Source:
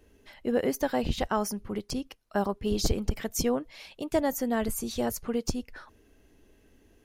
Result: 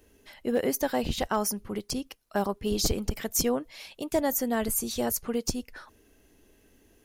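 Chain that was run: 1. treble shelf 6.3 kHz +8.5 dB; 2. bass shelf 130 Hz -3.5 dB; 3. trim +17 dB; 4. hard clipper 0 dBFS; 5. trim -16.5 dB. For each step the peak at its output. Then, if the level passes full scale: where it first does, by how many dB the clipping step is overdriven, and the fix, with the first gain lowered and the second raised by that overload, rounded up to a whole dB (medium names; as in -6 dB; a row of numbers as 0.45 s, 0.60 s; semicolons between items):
-10.0 dBFS, -11.5 dBFS, +5.5 dBFS, 0.0 dBFS, -16.5 dBFS; step 3, 5.5 dB; step 3 +11 dB, step 5 -10.5 dB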